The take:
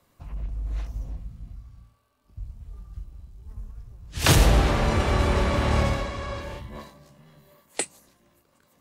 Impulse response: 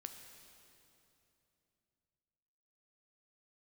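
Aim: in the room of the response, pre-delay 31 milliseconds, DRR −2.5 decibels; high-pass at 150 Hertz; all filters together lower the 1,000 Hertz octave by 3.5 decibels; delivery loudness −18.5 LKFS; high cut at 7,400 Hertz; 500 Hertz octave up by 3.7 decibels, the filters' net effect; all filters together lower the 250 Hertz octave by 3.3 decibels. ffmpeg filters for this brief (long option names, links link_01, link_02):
-filter_complex "[0:a]highpass=150,lowpass=7400,equalizer=frequency=250:width_type=o:gain=-6,equalizer=frequency=500:width_type=o:gain=8,equalizer=frequency=1000:width_type=o:gain=-7,asplit=2[link_01][link_02];[1:a]atrim=start_sample=2205,adelay=31[link_03];[link_02][link_03]afir=irnorm=-1:irlink=0,volume=7dB[link_04];[link_01][link_04]amix=inputs=2:normalize=0,volume=3dB"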